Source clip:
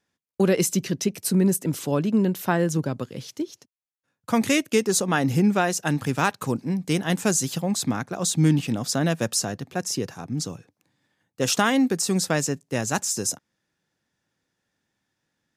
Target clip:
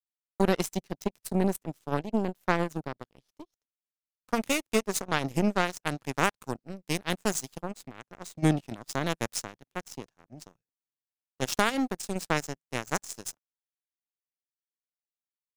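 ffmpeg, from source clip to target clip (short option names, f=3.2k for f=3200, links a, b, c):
-filter_complex "[0:a]asplit=3[a][b][c];[a]afade=t=out:st=7.71:d=0.02[d];[b]acompressor=threshold=-24dB:ratio=4,afade=t=in:st=7.71:d=0.02,afade=t=out:st=8.42:d=0.02[e];[c]afade=t=in:st=8.42:d=0.02[f];[d][e][f]amix=inputs=3:normalize=0,aeval=exprs='0.473*(cos(1*acos(clip(val(0)/0.473,-1,1)))-cos(1*PI/2))+0.0944*(cos(3*acos(clip(val(0)/0.473,-1,1)))-cos(3*PI/2))+0.00596*(cos(6*acos(clip(val(0)/0.473,-1,1)))-cos(6*PI/2))+0.0266*(cos(7*acos(clip(val(0)/0.473,-1,1)))-cos(7*PI/2))':c=same"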